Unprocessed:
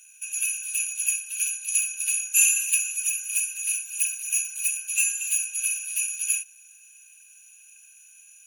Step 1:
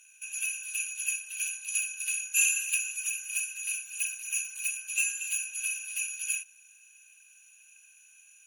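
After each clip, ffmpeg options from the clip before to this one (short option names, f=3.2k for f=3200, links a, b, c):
-af "aemphasis=mode=reproduction:type=cd"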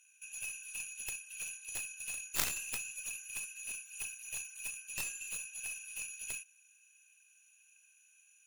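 -af "aeval=exprs='0.299*(cos(1*acos(clip(val(0)/0.299,-1,1)))-cos(1*PI/2))+0.133*(cos(3*acos(clip(val(0)/0.299,-1,1)))-cos(3*PI/2))+0.0335*(cos(4*acos(clip(val(0)/0.299,-1,1)))-cos(4*PI/2))+0.00944*(cos(6*acos(clip(val(0)/0.299,-1,1)))-cos(6*PI/2))':c=same,volume=1dB"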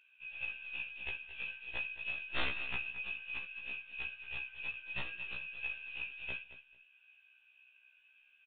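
-af "aresample=8000,asoftclip=type=hard:threshold=-30dB,aresample=44100,aecho=1:1:221|442:0.2|0.0359,afftfilt=real='re*1.73*eq(mod(b,3),0)':imag='im*1.73*eq(mod(b,3),0)':win_size=2048:overlap=0.75,volume=7.5dB"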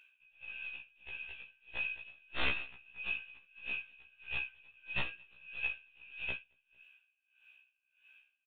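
-af "aeval=exprs='val(0)*pow(10,-25*(0.5-0.5*cos(2*PI*1.6*n/s))/20)':c=same,volume=5dB"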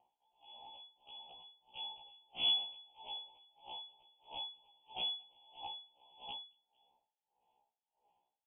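-filter_complex "[0:a]asuperstop=centerf=1700:order=4:qfactor=0.57,lowpass=f=2.9k:t=q:w=0.5098,lowpass=f=2.9k:t=q:w=0.6013,lowpass=f=2.9k:t=q:w=0.9,lowpass=f=2.9k:t=q:w=2.563,afreqshift=-3400,acrossover=split=2300[a][b];[a]aeval=exprs='val(0)*(1-0.5/2+0.5/2*cos(2*PI*3*n/s))':c=same[c];[b]aeval=exprs='val(0)*(1-0.5/2-0.5/2*cos(2*PI*3*n/s))':c=same[d];[c][d]amix=inputs=2:normalize=0,volume=2.5dB"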